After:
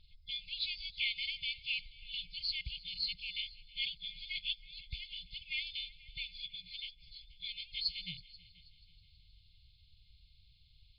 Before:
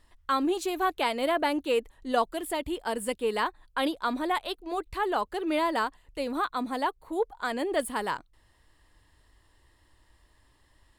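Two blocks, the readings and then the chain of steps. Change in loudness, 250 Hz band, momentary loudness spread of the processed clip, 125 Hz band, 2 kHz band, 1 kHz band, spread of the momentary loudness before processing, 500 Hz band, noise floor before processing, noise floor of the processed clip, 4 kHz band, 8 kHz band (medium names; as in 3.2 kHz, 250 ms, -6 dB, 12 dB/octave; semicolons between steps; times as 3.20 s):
-9.5 dB, -34.5 dB, 9 LU, no reading, -8.0 dB, under -40 dB, 6 LU, under -40 dB, -65 dBFS, -65 dBFS, +2.5 dB, under -35 dB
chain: knee-point frequency compression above 3.3 kHz 4:1; FFT band-reject 190–2100 Hz; multi-head delay 161 ms, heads second and third, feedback 41%, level -22 dB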